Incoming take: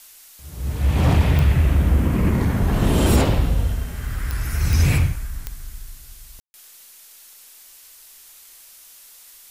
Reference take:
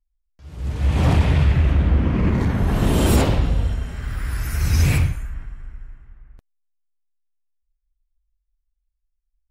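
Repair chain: de-click; room tone fill 6.4–6.54; denoiser 25 dB, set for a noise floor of -46 dBFS

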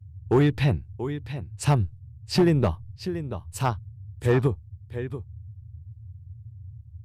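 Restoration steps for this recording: clip repair -13 dBFS; noise print and reduce 22 dB; inverse comb 0.684 s -11.5 dB

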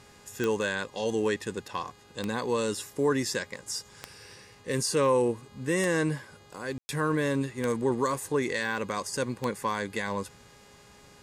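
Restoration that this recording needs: de-click; de-hum 411.2 Hz, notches 12; room tone fill 6.78–6.89

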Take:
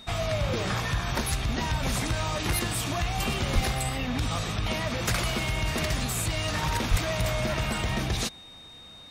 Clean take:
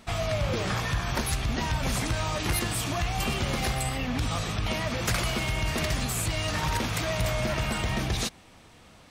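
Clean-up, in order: notch 3700 Hz, Q 30; 3.54–3.66 HPF 140 Hz 24 dB/oct; 6.9–7.02 HPF 140 Hz 24 dB/oct

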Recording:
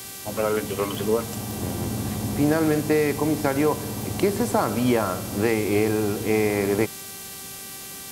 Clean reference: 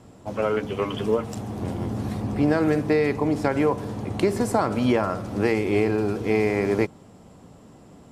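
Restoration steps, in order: de-click; de-hum 390.1 Hz, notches 40; denoiser 11 dB, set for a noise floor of -38 dBFS

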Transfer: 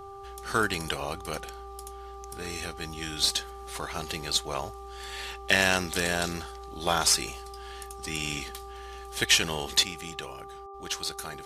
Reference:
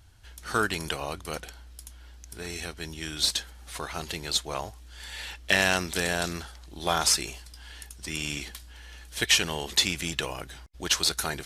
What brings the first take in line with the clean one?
de-hum 394.9 Hz, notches 3; gain correction +8.5 dB, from 9.83

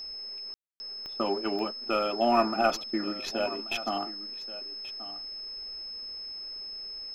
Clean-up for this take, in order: de-click; notch 5200 Hz, Q 30; room tone fill 0.54–0.8; inverse comb 1.132 s -16 dB

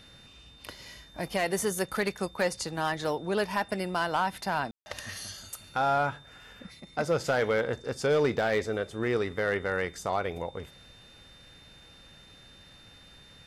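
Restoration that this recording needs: clip repair -18.5 dBFS; notch 3600 Hz, Q 30; room tone fill 4.71–4.86

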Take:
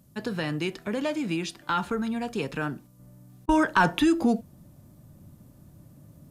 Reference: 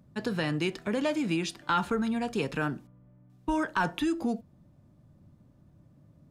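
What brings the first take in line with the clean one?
interpolate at 3.46, 27 ms; expander -45 dBFS, range -21 dB; gain correction -7 dB, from 2.99

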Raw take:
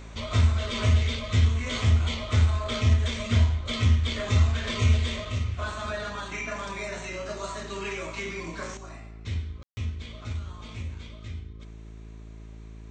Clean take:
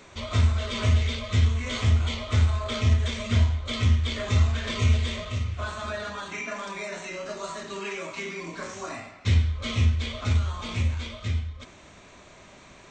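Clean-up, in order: de-hum 54.6 Hz, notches 8; room tone fill 9.63–9.77; gain correction +10.5 dB, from 8.77

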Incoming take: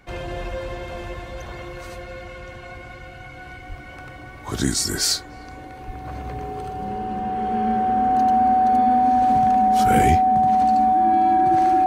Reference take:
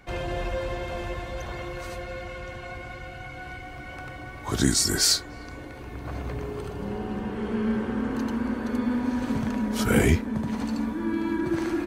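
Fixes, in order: notch 750 Hz, Q 30; de-plosive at 3.68/5.86

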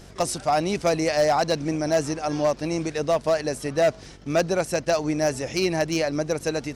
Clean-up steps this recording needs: clip repair -14.5 dBFS; de-hum 47.9 Hz, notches 10

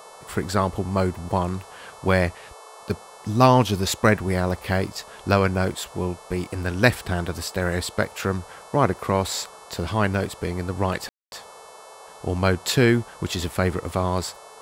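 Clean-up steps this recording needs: de-click; de-hum 438.1 Hz, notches 26; room tone fill 11.09–11.32; noise print and reduce 23 dB

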